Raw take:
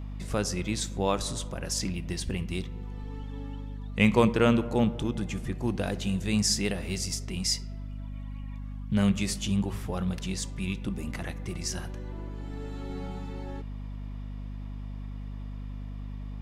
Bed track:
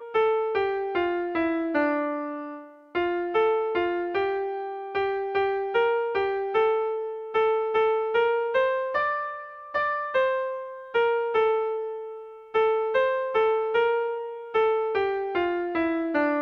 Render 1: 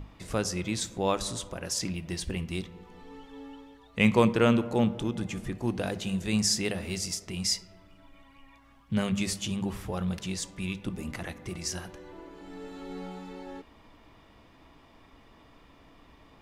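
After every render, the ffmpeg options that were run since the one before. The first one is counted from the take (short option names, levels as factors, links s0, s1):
-af "bandreject=f=50:t=h:w=6,bandreject=f=100:t=h:w=6,bandreject=f=150:t=h:w=6,bandreject=f=200:t=h:w=6,bandreject=f=250:t=h:w=6"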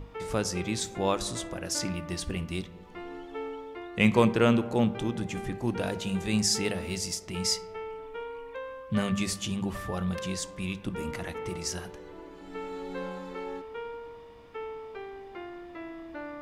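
-filter_complex "[1:a]volume=0.158[s0];[0:a][s0]amix=inputs=2:normalize=0"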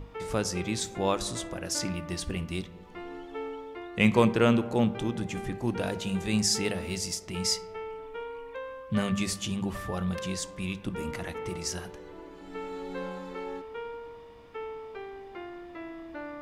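-af anull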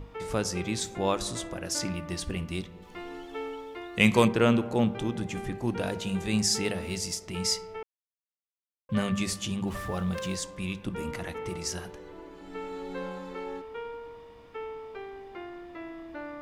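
-filter_complex "[0:a]asettb=1/sr,asplit=3[s0][s1][s2];[s0]atrim=end=2.824[s3];[s1]atrim=start=2.82:end=4.28,asetpts=PTS-STARTPTS,afade=t=in:d=0.004:c=qsin,afade=t=out:st=1.456:d=0.004:c=qsin,highshelf=f=3100:g=9[s4];[s2]atrim=start=4.276[s5];[s3][s4]acrossfade=d=0.004:c1=hsin:c2=qsin[s6];[s6][s5]acrossfade=d=0.004:c1=qsin:c2=hsin,asettb=1/sr,asplit=3[s7][s8][s9];[s7]atrim=end=9.674[s10];[s8]atrim=start=9.67:end=10.36,asetpts=PTS-STARTPTS,afade=t=in:d=0.004:c=qsin,afade=t=out:st=0.686:d=0.004:c=qsin,aeval=exprs='val(0)+0.5*0.00531*sgn(val(0))':c=same[s11];[s9]atrim=start=10.356[s12];[s10][s11]acrossfade=d=0.004:c1=hsin:c2=qsin[s13];[s13][s12]acrossfade=d=0.004:c1=qsin:c2=hsin,asplit=3[s14][s15][s16];[s14]atrim=end=7.83,asetpts=PTS-STARTPTS,afade=t=out:st=7.826:d=0.004:c=hsin[s17];[s15]atrim=start=7.83:end=8.89,asetpts=PTS-STARTPTS,volume=0[s18];[s16]atrim=start=8.89,asetpts=PTS-STARTPTS,afade=t=in:d=0.004:c=hsin[s19];[s17][s18][s19]concat=n=3:v=0:a=1"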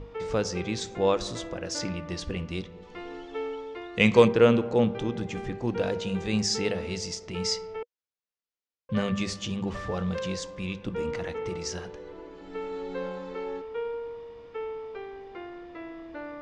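-af "lowpass=f=6500:w=0.5412,lowpass=f=6500:w=1.3066,equalizer=f=480:w=5.8:g=8"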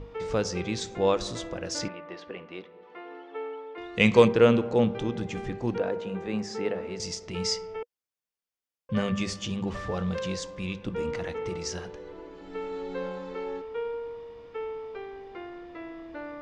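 -filter_complex "[0:a]asettb=1/sr,asplit=3[s0][s1][s2];[s0]atrim=end=1.884[s3];[s1]atrim=start=1.88:end=3.78,asetpts=PTS-STARTPTS,afade=t=in:d=0.004:c=qsin,afade=t=out:st=1.896:d=0.004:c=qsin,highpass=420,lowpass=2100[s4];[s2]atrim=start=3.776[s5];[s3][s4]acrossfade=d=0.004:c1=hsin:c2=qsin[s6];[s6][s5]acrossfade=d=0.004:c1=qsin:c2=hsin,asettb=1/sr,asplit=3[s7][s8][s9];[s7]atrim=end=5.784[s10];[s8]atrim=start=5.78:end=7,asetpts=PTS-STARTPTS,afade=t=in:d=0.004:c=qsin,afade=t=out:st=1.216:d=0.004:c=qsin,acrossover=split=200 2100:gain=0.224 1 0.178[s11][s12][s13];[s11][s12][s13]amix=inputs=3:normalize=0[s14];[s9]atrim=start=6.996[s15];[s10][s14]acrossfade=d=0.004:c1=hsin:c2=qsin[s16];[s16][s15]acrossfade=d=0.004:c1=qsin:c2=hsin,asettb=1/sr,asplit=3[s17][s18][s19];[s17]atrim=end=7.514[s20];[s18]atrim=start=7.51:end=9.45,asetpts=PTS-STARTPTS,afade=t=in:d=0.004:c=qsin,afade=t=out:st=1.936:d=0.004:c=qsin,bandreject=f=4000:w=12[s21];[s19]atrim=start=9.446[s22];[s20][s21]acrossfade=d=0.004:c1=hsin:c2=qsin[s23];[s23][s22]acrossfade=d=0.004:c1=qsin:c2=hsin"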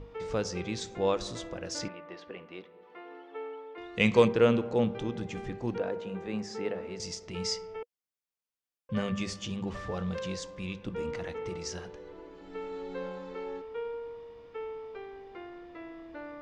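-af "volume=0.631"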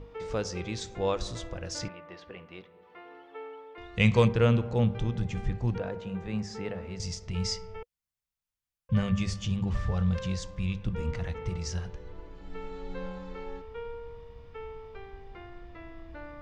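-af "asubboost=boost=8.5:cutoff=110"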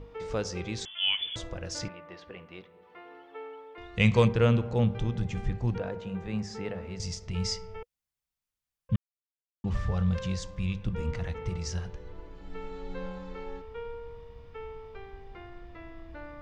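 -filter_complex "[0:a]asettb=1/sr,asplit=3[s0][s1][s2];[s0]atrim=end=0.854[s3];[s1]atrim=start=0.85:end=1.36,asetpts=PTS-STARTPTS,afade=t=in:d=0.004:c=qsin,afade=t=out:st=0.506:d=0.004:c=qsin,lowpass=f=3000:t=q:w=0.5098,lowpass=f=3000:t=q:w=0.6013,lowpass=f=3000:t=q:w=0.9,lowpass=f=3000:t=q:w=2.563,afreqshift=-3500[s4];[s2]atrim=start=1.356[s5];[s3][s4]acrossfade=d=0.004:c1=hsin:c2=qsin[s6];[s6][s5]acrossfade=d=0.004:c1=qsin:c2=hsin,asplit=3[s7][s8][s9];[s7]atrim=end=8.96,asetpts=PTS-STARTPTS,afade=t=out:st=8.956:d=0.004:c=hsin[s10];[s8]atrim=start=8.96:end=9.64,asetpts=PTS-STARTPTS,volume=0[s11];[s9]atrim=start=9.64,asetpts=PTS-STARTPTS,afade=t=in:d=0.004:c=hsin[s12];[s10][s11][s12]concat=n=3:v=0:a=1"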